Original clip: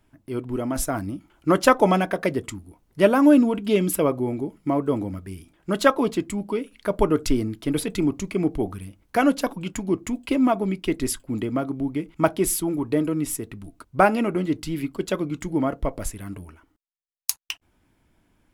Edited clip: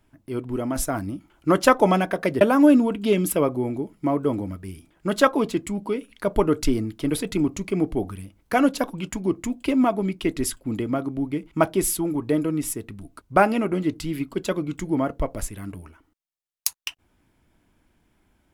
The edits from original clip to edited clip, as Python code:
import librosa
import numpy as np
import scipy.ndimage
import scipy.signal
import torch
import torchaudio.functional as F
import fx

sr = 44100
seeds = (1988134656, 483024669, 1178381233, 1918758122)

y = fx.edit(x, sr, fx.cut(start_s=2.41, length_s=0.63), tone=tone)